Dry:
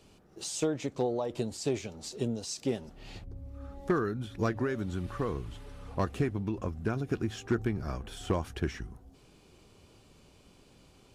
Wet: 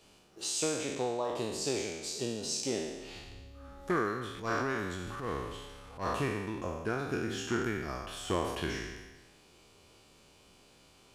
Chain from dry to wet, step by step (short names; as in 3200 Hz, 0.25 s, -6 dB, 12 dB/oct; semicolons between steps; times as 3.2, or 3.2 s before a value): spectral trails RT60 1.19 s; low shelf 410 Hz -9.5 dB; 4.31–6.15 transient shaper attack -12 dB, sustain +5 dB